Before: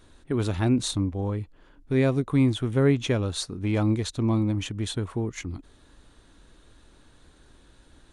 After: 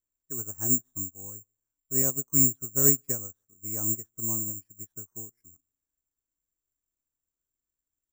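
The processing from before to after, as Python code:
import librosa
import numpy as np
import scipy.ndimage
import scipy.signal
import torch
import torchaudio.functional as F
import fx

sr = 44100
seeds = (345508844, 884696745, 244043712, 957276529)

y = scipy.signal.sosfilt(scipy.signal.butter(4, 1900.0, 'lowpass', fs=sr, output='sos'), x)
y = fx.echo_feedback(y, sr, ms=148, feedback_pct=32, wet_db=-21)
y = (np.kron(y[::6], np.eye(6)[0]) * 6)[:len(y)]
y = fx.upward_expand(y, sr, threshold_db=-33.0, expansion=2.5)
y = y * 10.0 ** (-6.5 / 20.0)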